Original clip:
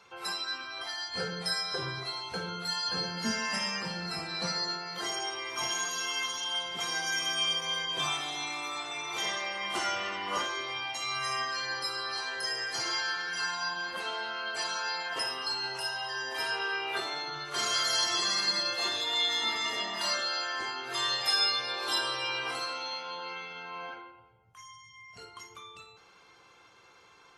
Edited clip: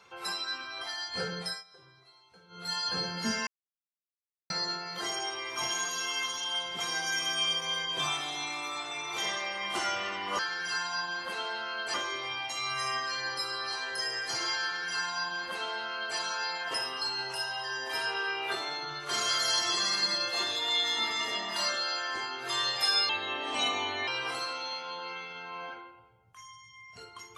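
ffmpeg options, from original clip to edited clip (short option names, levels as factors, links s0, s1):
-filter_complex "[0:a]asplit=9[s0][s1][s2][s3][s4][s5][s6][s7][s8];[s0]atrim=end=1.64,asetpts=PTS-STARTPTS,afade=t=out:st=1.39:d=0.25:silence=0.0749894[s9];[s1]atrim=start=1.64:end=2.49,asetpts=PTS-STARTPTS,volume=0.075[s10];[s2]atrim=start=2.49:end=3.47,asetpts=PTS-STARTPTS,afade=t=in:d=0.25:silence=0.0749894,afade=t=out:st=0.976:d=0.004:c=hsin[s11];[s3]atrim=start=3.47:end=4.5,asetpts=PTS-STARTPTS,volume=0[s12];[s4]atrim=start=4.5:end=10.392,asetpts=PTS-STARTPTS,afade=t=in:d=0.004:c=hsin[s13];[s5]atrim=start=13.068:end=14.622[s14];[s6]atrim=start=10.388:end=21.544[s15];[s7]atrim=start=21.54:end=22.28,asetpts=PTS-STARTPTS,asetrate=33075,aresample=44100[s16];[s8]atrim=start=22.276[s17];[s9][s10][s11][s12][s13]concat=n=5:v=0:a=1[s18];[s18][s14]acrossfade=d=0.004:c1=hsin:c2=hsin[s19];[s19][s15]acrossfade=d=0.004:c1=hsin:c2=hsin[s20];[s20][s16]acrossfade=d=0.004:c1=hsin:c2=hsin[s21];[s21][s17]acrossfade=d=0.004:c1=hsin:c2=hsin"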